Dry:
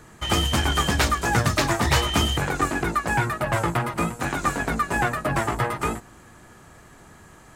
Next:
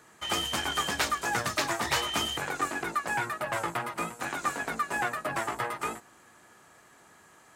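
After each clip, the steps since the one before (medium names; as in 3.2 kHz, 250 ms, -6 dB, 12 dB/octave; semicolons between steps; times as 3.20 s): high-pass 530 Hz 6 dB/octave; trim -5 dB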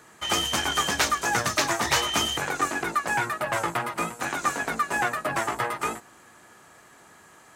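dynamic bell 6.1 kHz, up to +5 dB, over -53 dBFS, Q 4.6; trim +4.5 dB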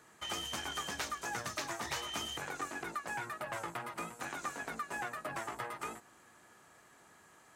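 compression 2:1, threshold -31 dBFS, peak gain reduction 7.5 dB; trim -9 dB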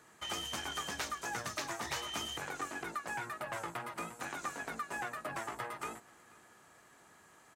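delay 485 ms -24 dB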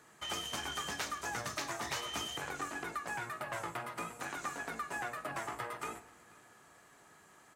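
reverberation RT60 0.80 s, pre-delay 7 ms, DRR 10 dB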